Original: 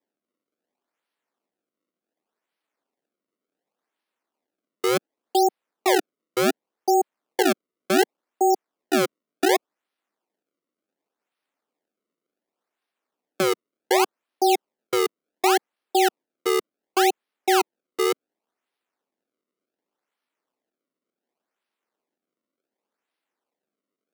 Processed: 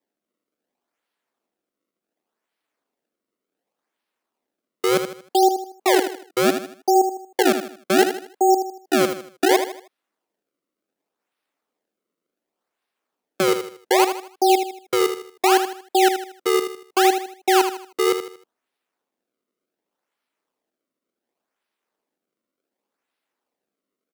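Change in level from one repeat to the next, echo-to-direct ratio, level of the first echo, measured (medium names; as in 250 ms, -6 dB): -8.5 dB, -8.0 dB, -8.5 dB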